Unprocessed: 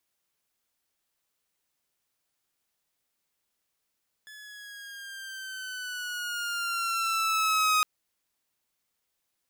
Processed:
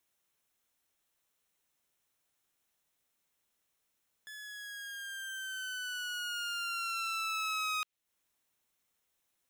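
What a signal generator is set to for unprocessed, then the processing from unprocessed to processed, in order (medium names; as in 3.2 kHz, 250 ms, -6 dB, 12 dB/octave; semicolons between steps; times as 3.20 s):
gliding synth tone saw, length 3.56 s, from 1.72 kHz, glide -5.5 st, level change +24 dB, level -18 dB
band-stop 4.7 kHz, Q 7.8; dynamic bell 3.1 kHz, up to +7 dB, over -41 dBFS, Q 1; compression 2.5:1, threshold -39 dBFS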